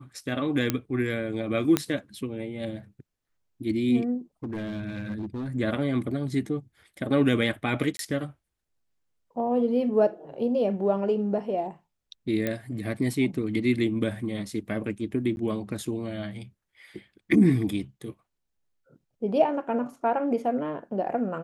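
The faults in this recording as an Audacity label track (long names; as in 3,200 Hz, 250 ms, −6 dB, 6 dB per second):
0.700000	0.700000	click −9 dBFS
1.770000	1.770000	click −7 dBFS
4.440000	5.480000	clipping −28.5 dBFS
7.970000	7.990000	drop-out 22 ms
12.470000	12.470000	click −14 dBFS
15.360000	15.370000	drop-out 11 ms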